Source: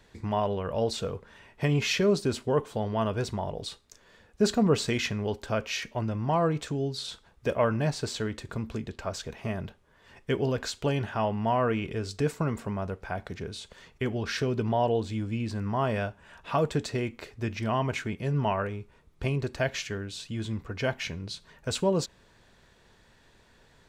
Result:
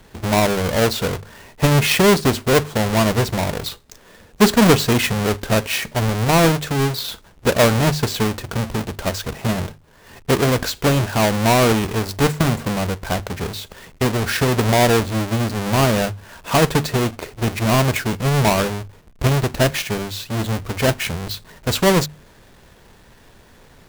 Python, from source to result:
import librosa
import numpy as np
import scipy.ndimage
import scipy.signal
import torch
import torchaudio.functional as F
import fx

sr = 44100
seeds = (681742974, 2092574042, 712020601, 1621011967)

y = fx.halfwave_hold(x, sr)
y = fx.hum_notches(y, sr, base_hz=50, count=3)
y = F.gain(torch.from_numpy(y), 7.0).numpy()